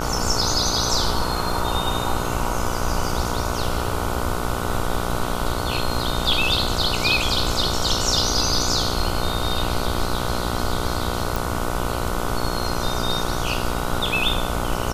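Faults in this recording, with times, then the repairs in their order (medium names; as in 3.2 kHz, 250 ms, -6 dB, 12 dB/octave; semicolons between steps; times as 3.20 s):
buzz 60 Hz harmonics 25 -27 dBFS
11.36 s: pop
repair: de-click; de-hum 60 Hz, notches 25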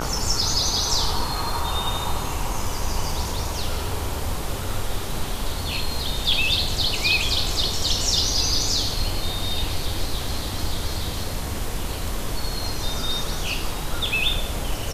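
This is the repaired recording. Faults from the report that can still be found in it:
nothing left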